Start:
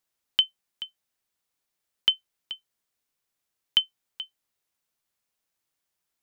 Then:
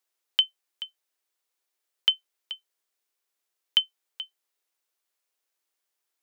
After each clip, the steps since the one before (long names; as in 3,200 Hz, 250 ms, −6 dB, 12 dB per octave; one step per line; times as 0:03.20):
Chebyshev high-pass filter 350 Hz, order 3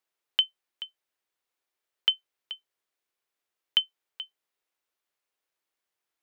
bass and treble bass +3 dB, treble −7 dB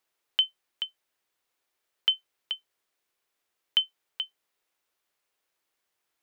brickwall limiter −17 dBFS, peak gain reduction 7.5 dB
level +5.5 dB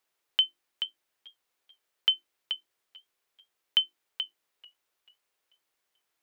mains-hum notches 50/100/150/200/250/300/350 Hz
feedback echo with a swinging delay time 438 ms, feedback 39%, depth 62 cents, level −22.5 dB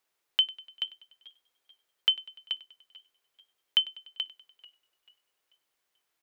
repeating echo 98 ms, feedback 58%, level −20 dB